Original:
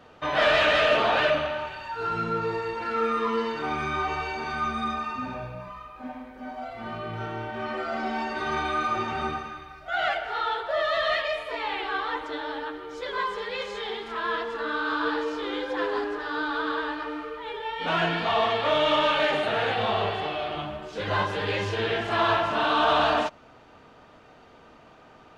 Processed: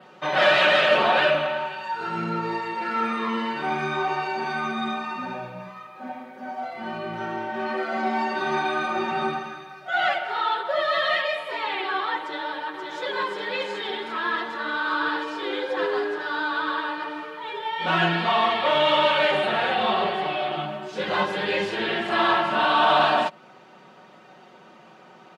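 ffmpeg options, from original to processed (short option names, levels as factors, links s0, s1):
-filter_complex "[0:a]asplit=2[s0][s1];[s1]afade=t=in:st=12.2:d=0.01,afade=t=out:st=12.8:d=0.01,aecho=0:1:530|1060|1590|2120|2650|3180|3710|4240|4770|5300|5830|6360:0.595662|0.47653|0.381224|0.304979|0.243983|0.195187|0.156149|0.124919|0.0999355|0.0799484|0.0639587|0.051167[s2];[s0][s2]amix=inputs=2:normalize=0,highpass=f=140:w=0.5412,highpass=f=140:w=1.3066,aecho=1:1:5.4:0.72,adynamicequalizer=threshold=0.002:dfrequency=6200:dqfactor=2.9:tfrequency=6200:tqfactor=2.9:attack=5:release=100:ratio=0.375:range=3.5:mode=cutabove:tftype=bell,volume=1.19"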